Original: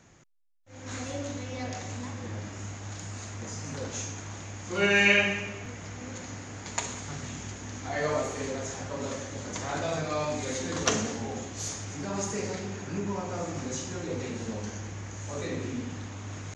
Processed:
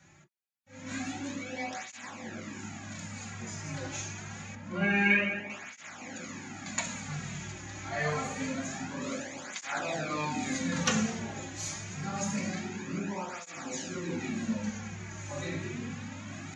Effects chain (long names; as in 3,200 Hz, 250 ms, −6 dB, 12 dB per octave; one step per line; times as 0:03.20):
0:04.55–0:05.50: low-pass filter 1,200 Hz 6 dB per octave
convolution reverb, pre-delay 3 ms, DRR 1 dB
through-zero flanger with one copy inverted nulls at 0.26 Hz, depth 4.5 ms